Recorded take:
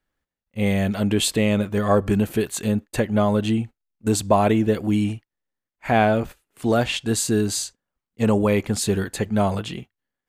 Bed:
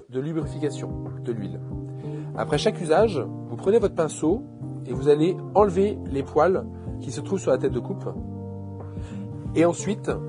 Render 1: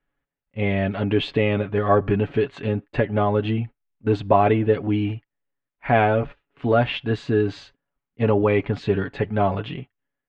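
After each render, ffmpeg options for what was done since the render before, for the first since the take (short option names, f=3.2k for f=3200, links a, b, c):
-af "lowpass=f=3k:w=0.5412,lowpass=f=3k:w=1.3066,aecho=1:1:7.1:0.54"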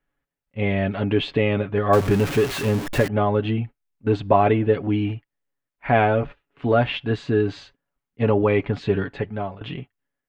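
-filter_complex "[0:a]asettb=1/sr,asplit=3[a][b][c];[a]atrim=end=1.934[d];[b]atrim=start=1.93:end=3.08,asetpts=PTS-STARTPTS,afade=t=in:d=0.004:c=qsin,afade=t=out:st=1.146:d=0.004:c=qsin,aeval=exprs='val(0)+0.5*0.0631*sgn(val(0))':c=same[e];[c]atrim=start=3.076[f];[d][e]acrossfade=d=0.004:c1=hsin:c2=qsin[g];[g][f]acrossfade=d=0.004:c1=qsin:c2=hsin,asplit=2[h][i];[h]atrim=end=9.61,asetpts=PTS-STARTPTS,afade=t=out:st=9.04:d=0.57:silence=0.112202[j];[i]atrim=start=9.61,asetpts=PTS-STARTPTS,afade=t=in:d=0.004:c=hsin:silence=0.112202[k];[j][k]concat=n=2:v=0:a=1"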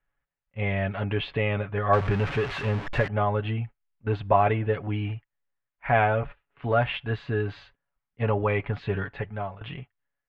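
-af "lowpass=2.6k,equalizer=f=290:t=o:w=1.6:g=-12"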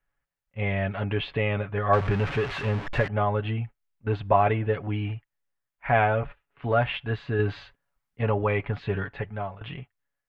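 -filter_complex "[0:a]asplit=3[a][b][c];[a]atrim=end=7.392[d];[b]atrim=start=7.388:end=8.212,asetpts=PTS-STARTPTS,volume=4dB[e];[c]atrim=start=8.208[f];[d][e]acrossfade=d=0.004:c1=hsin:c2=hsin[g];[g][f]acrossfade=d=0.004:c1=hsin:c2=hsin"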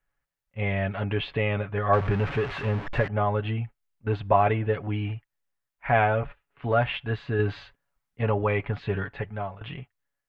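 -filter_complex "[0:a]asettb=1/sr,asplit=3[a][b][c];[a]atrim=end=1.914[d];[b]atrim=start=1.91:end=3.25,asetpts=PTS-STARTPTS,afade=t=in:d=0.004:c=qsin,afade=t=out:st=1.336:d=0.004:c=qsin,highshelf=f=4.1k:g=-8[e];[c]atrim=start=3.246[f];[d][e]acrossfade=d=0.004:c1=hsin:c2=qsin[g];[g][f]acrossfade=d=0.004:c1=qsin:c2=hsin"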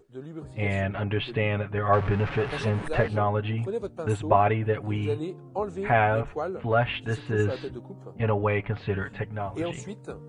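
-filter_complex "[1:a]volume=-12dB[a];[0:a][a]amix=inputs=2:normalize=0"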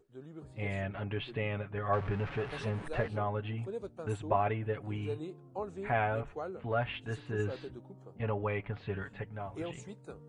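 -af "volume=-9dB"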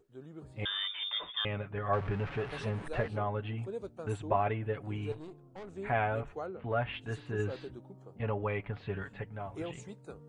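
-filter_complex "[0:a]asettb=1/sr,asplit=3[a][b][c];[a]atrim=end=0.654[d];[b]atrim=start=0.65:end=1.45,asetpts=PTS-STARTPTS,afade=t=in:d=0.004:c=qsin,afade=t=out:st=0.796:d=0.004:c=qsin,lowpass=f=3.1k:t=q:w=0.5098,lowpass=f=3.1k:t=q:w=0.6013,lowpass=f=3.1k:t=q:w=0.9,lowpass=f=3.1k:t=q:w=2.563,afreqshift=-3700[e];[c]atrim=start=1.446[f];[d][e]acrossfade=d=0.004:c1=hsin:c2=qsin[g];[g][f]acrossfade=d=0.004:c1=qsin:c2=hsin,asettb=1/sr,asplit=3[h][i][j];[h]atrim=end=5.124[k];[i]atrim=start=5.12:end=5.76,asetpts=PTS-STARTPTS,afade=t=in:d=0.004:c=qsin,afade=t=out:st=0.636:d=0.004:c=qsin,aeval=exprs='(tanh(126*val(0)+0.5)-tanh(0.5))/126':c=same[l];[j]atrim=start=5.756[m];[k][l]acrossfade=d=0.004:c1=hsin:c2=qsin[n];[n][m]acrossfade=d=0.004:c1=qsin:c2=hsin,asettb=1/sr,asplit=3[o][p][q];[o]atrim=end=6.464[r];[p]atrim=start=6.46:end=6.93,asetpts=PTS-STARTPTS,afade=t=in:d=0.004:c=qsin,afade=t=out:st=0.466:d=0.004:c=qsin,lowpass=3.8k[s];[q]atrim=start=6.926[t];[r][s]acrossfade=d=0.004:c1=hsin:c2=qsin[u];[u][t]acrossfade=d=0.004:c1=qsin:c2=hsin"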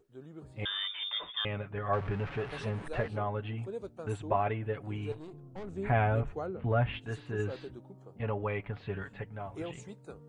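-filter_complex "[0:a]asettb=1/sr,asplit=3[a][b][c];[a]atrim=end=5.334[d];[b]atrim=start=5.33:end=6.99,asetpts=PTS-STARTPTS,afade=t=in:d=0.004:c=qsin,afade=t=out:st=1.656:d=0.004:c=qsin,lowshelf=f=270:g=10[e];[c]atrim=start=6.986[f];[d][e]acrossfade=d=0.004:c1=hsin:c2=qsin[g];[g][f]acrossfade=d=0.004:c1=qsin:c2=hsin"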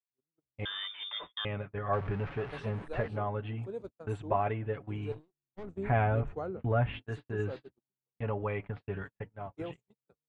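-af "agate=range=-49dB:threshold=-40dB:ratio=16:detection=peak,highshelf=f=4.6k:g=-10.5"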